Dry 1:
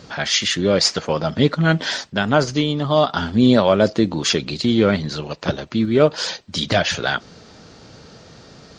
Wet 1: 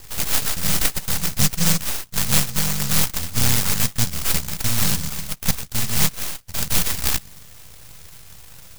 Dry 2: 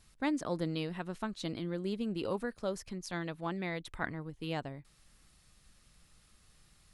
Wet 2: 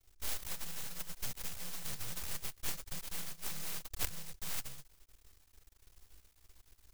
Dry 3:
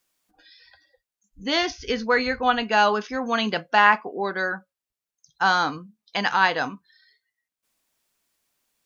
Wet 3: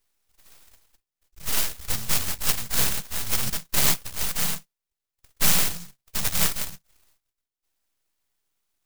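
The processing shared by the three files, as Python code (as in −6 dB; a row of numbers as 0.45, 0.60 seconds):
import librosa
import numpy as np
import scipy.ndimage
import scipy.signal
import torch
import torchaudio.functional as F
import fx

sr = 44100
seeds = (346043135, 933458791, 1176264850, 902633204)

y = fx.bit_reversed(x, sr, seeds[0], block=128)
y = fx.rider(y, sr, range_db=3, speed_s=0.5)
y = np.maximum(y, 0.0)
y = fx.env_flanger(y, sr, rest_ms=2.5, full_db=-18.0)
y = fx.noise_mod_delay(y, sr, seeds[1], noise_hz=5900.0, depth_ms=0.49)
y = y * librosa.db_to_amplitude(5.5)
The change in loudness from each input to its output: −2.0, −4.0, −2.0 LU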